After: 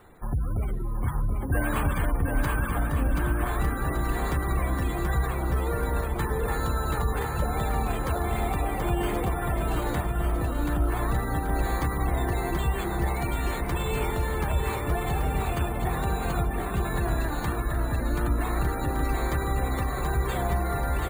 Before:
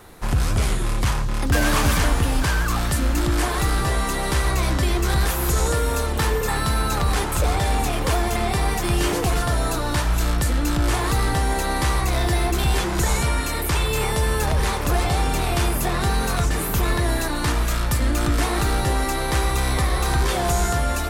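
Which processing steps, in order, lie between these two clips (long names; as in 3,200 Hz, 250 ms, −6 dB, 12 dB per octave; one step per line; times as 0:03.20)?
running median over 5 samples
gate on every frequency bin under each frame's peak −25 dB strong
bad sample-rate conversion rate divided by 4×, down none, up hold
bouncing-ball delay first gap 730 ms, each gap 0.65×, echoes 5
level −7 dB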